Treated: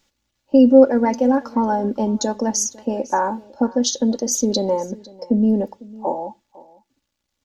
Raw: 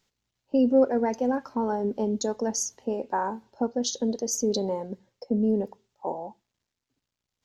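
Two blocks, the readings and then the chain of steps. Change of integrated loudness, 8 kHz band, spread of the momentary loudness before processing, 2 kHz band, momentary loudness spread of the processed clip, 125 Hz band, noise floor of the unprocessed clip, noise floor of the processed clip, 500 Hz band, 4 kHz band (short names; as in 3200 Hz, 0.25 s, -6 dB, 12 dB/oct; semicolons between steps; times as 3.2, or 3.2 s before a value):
+8.5 dB, +8.0 dB, 13 LU, +8.0 dB, 14 LU, n/a, under -85 dBFS, -77 dBFS, +7.5 dB, +8.5 dB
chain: comb 3.5 ms, depth 51%; echo 0.502 s -21.5 dB; gain +7 dB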